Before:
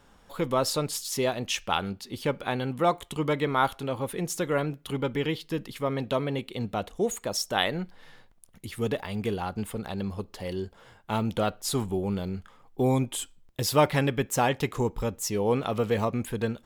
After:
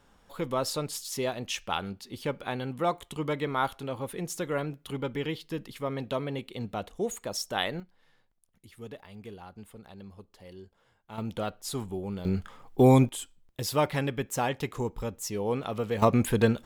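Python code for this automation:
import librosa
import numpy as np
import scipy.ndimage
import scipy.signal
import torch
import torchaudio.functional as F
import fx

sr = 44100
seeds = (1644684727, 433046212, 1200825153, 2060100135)

y = fx.gain(x, sr, db=fx.steps((0.0, -4.0), (7.8, -14.5), (11.18, -6.0), (12.25, 5.5), (13.09, -4.5), (16.02, 6.0)))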